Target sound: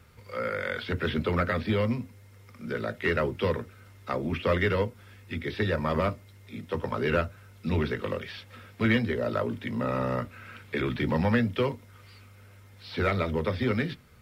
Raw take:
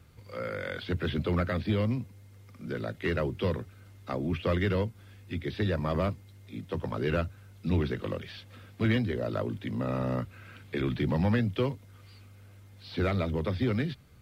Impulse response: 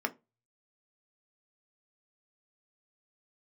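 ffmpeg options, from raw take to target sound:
-filter_complex "[0:a]asplit=2[s0][s1];[1:a]atrim=start_sample=2205,lowshelf=f=300:g=-9.5[s2];[s1][s2]afir=irnorm=-1:irlink=0,volume=0.531[s3];[s0][s3]amix=inputs=2:normalize=0"

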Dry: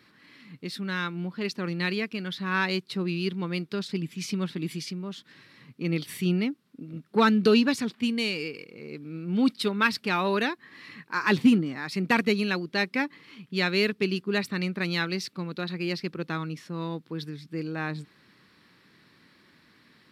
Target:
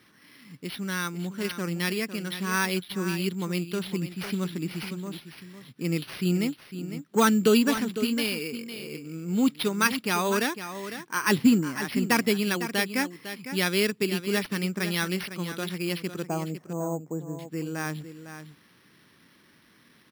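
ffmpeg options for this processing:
-filter_complex "[0:a]asettb=1/sr,asplit=3[s0][s1][s2];[s0]atrim=end=16.274[s3];[s1]atrim=start=16.27:end=17.39,asetpts=PTS-STARTPTS,afade=t=in:d=0.004:c=qsin,afade=t=out:st=1.116:d=0.004:c=qsin,lowpass=f=710:t=q:w=3.8[s4];[s2]atrim=start=17.386[s5];[s3][s4]acrossfade=d=0.004:c1=hsin:c2=qsin[s6];[s6][s5]acrossfade=d=0.004:c1=qsin:c2=hsin,aecho=1:1:504:0.282,acrusher=samples=6:mix=1:aa=0.000001"

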